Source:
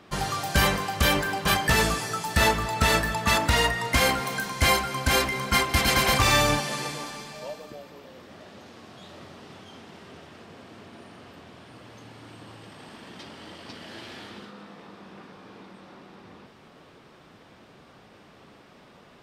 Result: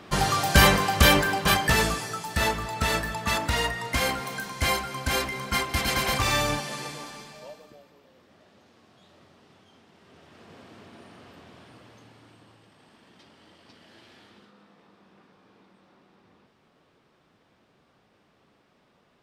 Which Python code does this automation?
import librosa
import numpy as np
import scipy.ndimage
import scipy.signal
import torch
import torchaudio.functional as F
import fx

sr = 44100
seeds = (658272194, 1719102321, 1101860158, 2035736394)

y = fx.gain(x, sr, db=fx.line((1.01, 5.0), (2.26, -4.0), (7.21, -4.0), (7.98, -11.5), (9.94, -11.5), (10.53, -2.5), (11.63, -2.5), (12.68, -12.0)))